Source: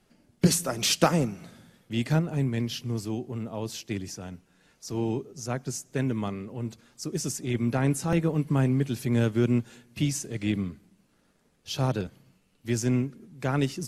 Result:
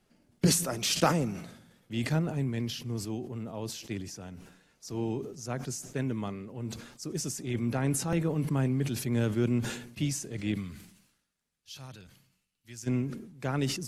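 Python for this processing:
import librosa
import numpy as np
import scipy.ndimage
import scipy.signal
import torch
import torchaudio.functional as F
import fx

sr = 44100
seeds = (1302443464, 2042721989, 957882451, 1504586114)

y = fx.tone_stack(x, sr, knobs='5-5-5', at=(10.54, 12.86), fade=0.02)
y = fx.sustainer(y, sr, db_per_s=72.0)
y = y * 10.0 ** (-4.5 / 20.0)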